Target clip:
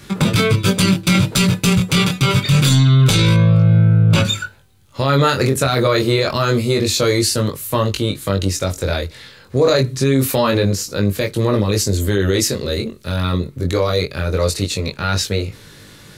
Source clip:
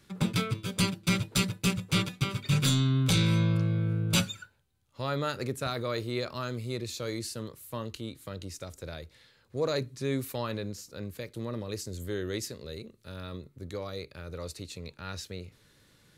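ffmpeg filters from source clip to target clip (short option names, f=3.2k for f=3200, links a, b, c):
-filter_complex "[0:a]asettb=1/sr,asplit=3[a][b][c];[a]atrim=end=3.344[d];[b]atrim=start=3.34:end=4.25,asetpts=PTS-STARTPTS,afade=t=in:d=0.004:c=qsin,afade=t=out:st=0.906:d=0.004:c=qsin,lowpass=f=1.6k:p=1[e];[c]atrim=start=4.246[f];[d][e]acrossfade=d=0.004:c1=hsin:c2=qsin[g];[g][f]acrossfade=d=0.004:c1=qsin:c2=hsin,flanger=delay=19.5:depth=3.4:speed=0.26,alimiter=level_in=28dB:limit=-1dB:release=50:level=0:latency=1,volume=-4.5dB"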